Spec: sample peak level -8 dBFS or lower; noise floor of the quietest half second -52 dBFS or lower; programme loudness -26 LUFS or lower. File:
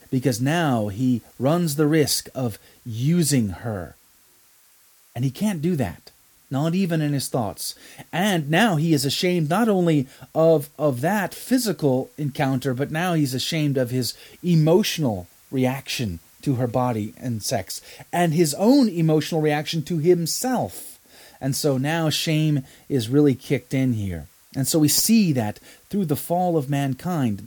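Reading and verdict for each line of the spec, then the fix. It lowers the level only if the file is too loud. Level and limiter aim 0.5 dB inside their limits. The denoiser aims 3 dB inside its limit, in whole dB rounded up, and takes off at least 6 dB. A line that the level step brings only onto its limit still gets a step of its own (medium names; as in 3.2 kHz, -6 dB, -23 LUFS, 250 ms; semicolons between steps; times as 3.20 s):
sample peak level -5.5 dBFS: fail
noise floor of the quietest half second -56 dBFS: pass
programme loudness -22.0 LUFS: fail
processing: trim -4.5 dB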